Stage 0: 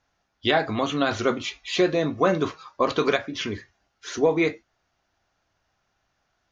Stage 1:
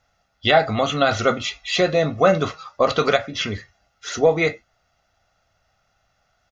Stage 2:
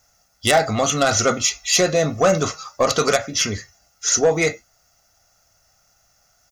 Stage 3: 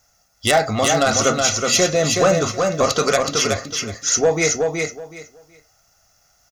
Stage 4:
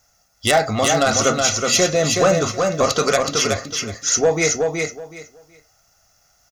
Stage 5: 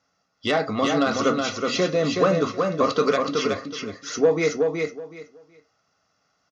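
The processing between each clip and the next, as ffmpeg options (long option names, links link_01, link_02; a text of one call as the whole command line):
ffmpeg -i in.wav -af "aecho=1:1:1.5:0.59,volume=4dB" out.wav
ffmpeg -i in.wav -af "acontrast=79,aexciter=amount=9.2:drive=2.3:freq=5200,volume=-5.5dB" out.wav
ffmpeg -i in.wav -af "aecho=1:1:372|744|1116:0.631|0.126|0.0252" out.wav
ffmpeg -i in.wav -af anull out.wav
ffmpeg -i in.wav -af "highpass=130,equalizer=frequency=180:width_type=q:width=4:gain=6,equalizer=frequency=280:width_type=q:width=4:gain=10,equalizer=frequency=450:width_type=q:width=4:gain=7,equalizer=frequency=740:width_type=q:width=4:gain=-4,equalizer=frequency=1100:width_type=q:width=4:gain=8,lowpass=frequency=4800:width=0.5412,lowpass=frequency=4800:width=1.3066,volume=-7dB" out.wav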